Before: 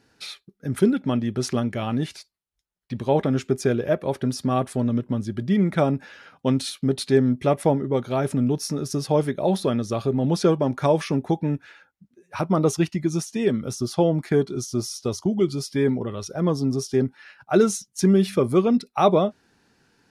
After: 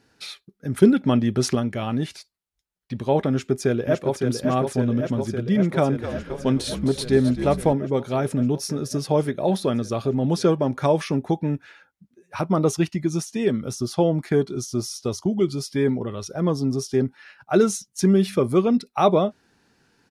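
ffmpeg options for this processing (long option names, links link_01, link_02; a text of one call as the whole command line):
ffmpeg -i in.wav -filter_complex "[0:a]asplit=2[link_01][link_02];[link_02]afade=type=in:start_time=3.31:duration=0.01,afade=type=out:start_time=4.17:duration=0.01,aecho=0:1:560|1120|1680|2240|2800|3360|3920|4480|5040|5600|6160|6720:0.530884|0.424708|0.339766|0.271813|0.21745|0.17396|0.139168|0.111335|0.0890676|0.0712541|0.0570033|0.0456026[link_03];[link_01][link_03]amix=inputs=2:normalize=0,asettb=1/sr,asplit=3[link_04][link_05][link_06];[link_04]atrim=end=5.694[link_07];[link_05]atrim=start=5.69:end=7.73,asetpts=PTS-STARTPTS,afade=type=in:duration=0.004:curve=qsin,afade=type=out:start_time=2.036:duration=0.004:curve=qsin,asplit=6[link_08][link_09][link_10][link_11][link_12][link_13];[link_09]adelay=262,afreqshift=-62,volume=-11dB[link_14];[link_10]adelay=524,afreqshift=-124,volume=-17.4dB[link_15];[link_11]adelay=786,afreqshift=-186,volume=-23.8dB[link_16];[link_12]adelay=1048,afreqshift=-248,volume=-30.1dB[link_17];[link_13]adelay=1310,afreqshift=-310,volume=-36.5dB[link_18];[link_08][link_14][link_15][link_16][link_17][link_18]amix=inputs=6:normalize=0,atrim=end_sample=89964[link_19];[link_06]atrim=start=7.726[link_20];[link_07][link_19]acrossfade=duration=0.004:curve1=hsin:curve2=qsin[link_21];[link_21][link_20]acrossfade=duration=0.004:curve1=qsin:curve2=hsin,asplit=3[link_22][link_23][link_24];[link_22]atrim=end=0.822[link_25];[link_23]atrim=start=0.818:end=1.552,asetpts=PTS-STARTPTS,volume=4dB[link_26];[link_24]atrim=start=1.548[link_27];[link_25][link_26]acrossfade=duration=0.004:curve1=hsin:curve2=hsin[link_28];[link_28][link_27]acrossfade=duration=0.004:curve1=hsin:curve2=hsin" out.wav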